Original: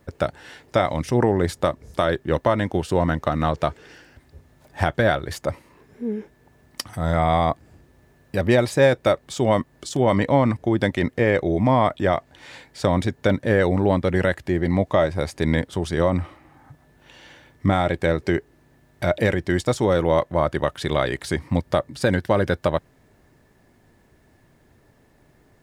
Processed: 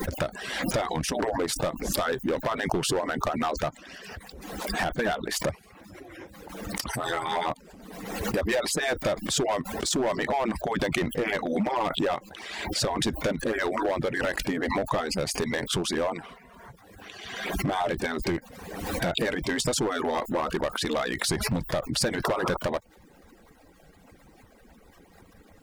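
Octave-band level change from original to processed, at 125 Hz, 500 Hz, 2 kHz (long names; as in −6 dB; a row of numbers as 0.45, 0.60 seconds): −11.5, −7.5, −3.0 decibels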